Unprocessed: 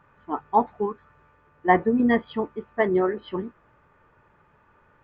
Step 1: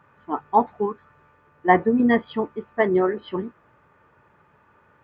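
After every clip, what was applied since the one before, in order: HPF 78 Hz; gain +2 dB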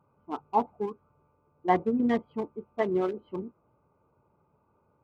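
Wiener smoothing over 25 samples; notch 1800 Hz, Q 9.9; gain -7 dB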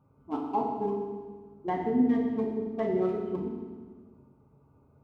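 low shelf 340 Hz +11 dB; compressor, threshold -23 dBFS, peak gain reduction 9 dB; reverb RT60 1.5 s, pre-delay 4 ms, DRR -2 dB; gain -5 dB

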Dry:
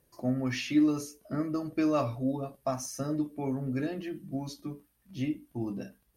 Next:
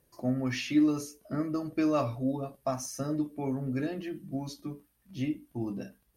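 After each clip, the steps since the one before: nothing audible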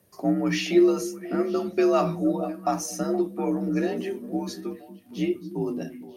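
frequency shift +50 Hz; delay with a stepping band-pass 0.235 s, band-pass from 220 Hz, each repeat 1.4 oct, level -9 dB; gain +6 dB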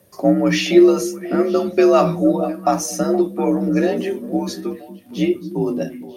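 small resonant body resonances 550/3500 Hz, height 10 dB, ringing for 85 ms; gain +7.5 dB

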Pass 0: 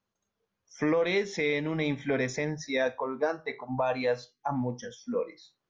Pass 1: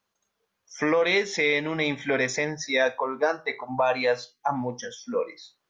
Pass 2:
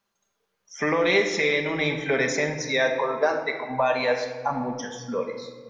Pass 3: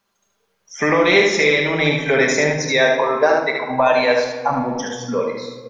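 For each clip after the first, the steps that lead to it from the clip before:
low shelf 380 Hz -11.5 dB; gain +8 dB
shoebox room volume 1800 m³, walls mixed, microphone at 1.2 m
echo 74 ms -4.5 dB; gain +6.5 dB

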